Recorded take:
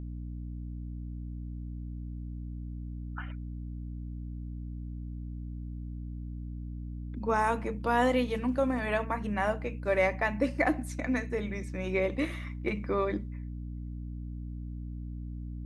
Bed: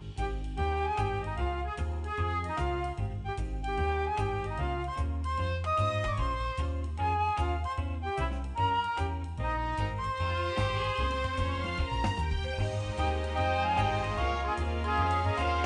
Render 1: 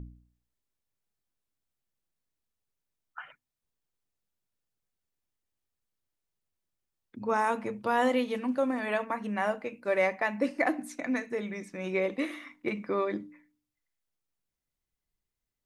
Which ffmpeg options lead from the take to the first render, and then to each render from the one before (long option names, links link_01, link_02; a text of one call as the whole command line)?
ffmpeg -i in.wav -af "bandreject=frequency=60:width_type=h:width=4,bandreject=frequency=120:width_type=h:width=4,bandreject=frequency=180:width_type=h:width=4,bandreject=frequency=240:width_type=h:width=4,bandreject=frequency=300:width_type=h:width=4" out.wav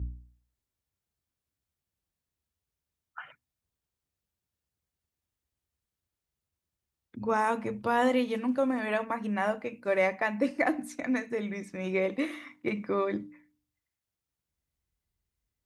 ffmpeg -i in.wav -af "highpass=43,equalizer=frequency=63:width_type=o:width=1.8:gain=12" out.wav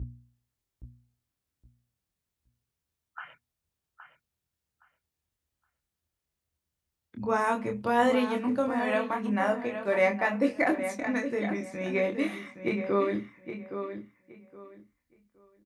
ffmpeg -i in.wav -filter_complex "[0:a]asplit=2[link_01][link_02];[link_02]adelay=25,volume=-4.5dB[link_03];[link_01][link_03]amix=inputs=2:normalize=0,asplit=2[link_04][link_05];[link_05]adelay=818,lowpass=frequency=3400:poles=1,volume=-9dB,asplit=2[link_06][link_07];[link_07]adelay=818,lowpass=frequency=3400:poles=1,volume=0.23,asplit=2[link_08][link_09];[link_09]adelay=818,lowpass=frequency=3400:poles=1,volume=0.23[link_10];[link_04][link_06][link_08][link_10]amix=inputs=4:normalize=0" out.wav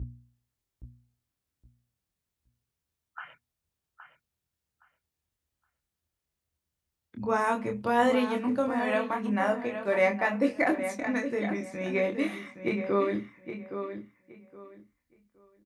ffmpeg -i in.wav -af anull out.wav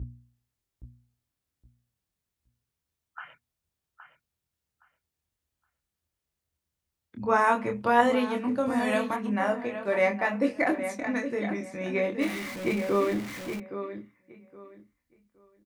ffmpeg -i in.wav -filter_complex "[0:a]asettb=1/sr,asplit=3[link_01][link_02][link_03];[link_01]atrim=end=7.274[link_04];[link_02]atrim=start=7.27:end=8.01,asetpts=PTS-STARTPTS,afade=type=in:duration=0.004:curve=qsin,afade=type=out:start_time=0.736:duration=0.004:curve=qsin,equalizer=frequency=1300:width_type=o:width=2.6:gain=5.5[link_05];[link_03]atrim=start=8.006[link_06];[link_04][link_05]acrossfade=duration=0.004:curve1=hsin:curve2=qsin[link_07];[link_07][link_06]acrossfade=duration=0.004:curve1=qsin:curve2=hsin,asplit=3[link_08][link_09][link_10];[link_08]afade=type=out:start_time=8.66:duration=0.02[link_11];[link_09]bass=frequency=250:gain=7,treble=frequency=4000:gain=12,afade=type=in:start_time=8.66:duration=0.02,afade=type=out:start_time=9.15:duration=0.02[link_12];[link_10]afade=type=in:start_time=9.15:duration=0.02[link_13];[link_11][link_12][link_13]amix=inputs=3:normalize=0,asettb=1/sr,asplit=3[link_14][link_15][link_16];[link_14]atrim=end=12.214[link_17];[link_15]atrim=start=12.21:end=13.6,asetpts=PTS-STARTPTS,afade=type=in:duration=0.004:curve=qsin,afade=type=out:start_time=1.386:duration=0.004:curve=qsin,aeval=exprs='val(0)+0.5*0.02*sgn(val(0))':channel_layout=same[link_18];[link_16]atrim=start=13.596[link_19];[link_17][link_18]acrossfade=duration=0.004:curve1=hsin:curve2=qsin[link_20];[link_20][link_19]acrossfade=duration=0.004:curve1=qsin:curve2=hsin" out.wav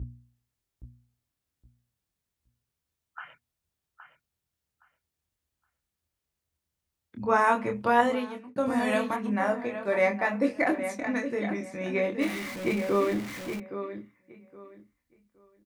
ffmpeg -i in.wav -filter_complex "[0:a]asettb=1/sr,asplit=3[link_01][link_02][link_03];[link_01]atrim=end=9.244[link_04];[link_02]atrim=start=9.24:end=10.55,asetpts=PTS-STARTPTS,afade=type=in:duration=0.004:curve=qsin,afade=type=out:start_time=1.306:duration=0.004:curve=qsin,bandreject=frequency=2900:width=12[link_05];[link_03]atrim=start=10.546[link_06];[link_04][link_05]acrossfade=duration=0.004:curve1=hsin:curve2=qsin[link_07];[link_07][link_06]acrossfade=duration=0.004:curve1=qsin:curve2=hsin,asplit=2[link_08][link_09];[link_08]atrim=end=8.56,asetpts=PTS-STARTPTS,afade=type=out:start_time=7.92:duration=0.64[link_10];[link_09]atrim=start=8.56,asetpts=PTS-STARTPTS,afade=type=in:duration=0.004:curve=hsin[link_11];[link_10][link_11]concat=n=2:v=0:a=1" out.wav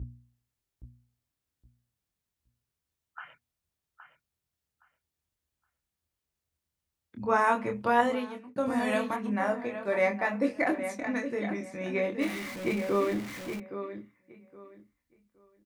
ffmpeg -i in.wav -af "volume=-2dB" out.wav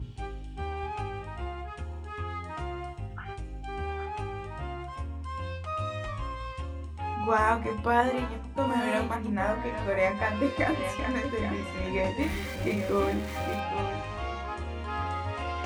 ffmpeg -i in.wav -i bed.wav -filter_complex "[1:a]volume=-4.5dB[link_01];[0:a][link_01]amix=inputs=2:normalize=0" out.wav